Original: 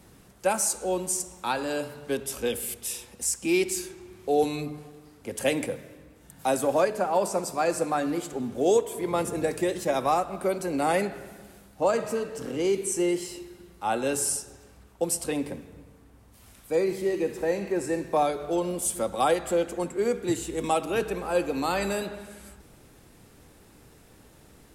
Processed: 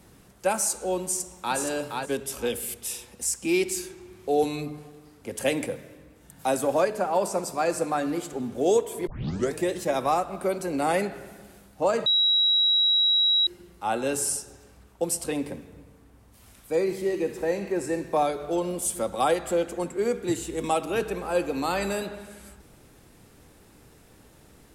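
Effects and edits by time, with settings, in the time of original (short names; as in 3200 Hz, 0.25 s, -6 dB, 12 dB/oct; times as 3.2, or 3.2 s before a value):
1.03–1.58 echo throw 0.47 s, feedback 15%, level -4 dB
9.07 tape start 0.47 s
12.06–13.47 bleep 3870 Hz -18 dBFS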